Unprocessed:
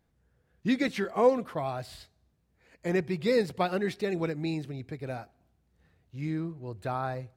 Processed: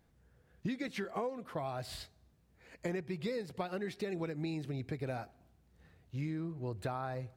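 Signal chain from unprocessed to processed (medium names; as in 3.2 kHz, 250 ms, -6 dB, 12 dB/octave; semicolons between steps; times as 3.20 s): compression 16:1, threshold -37 dBFS, peak gain reduction 21 dB; trim +3 dB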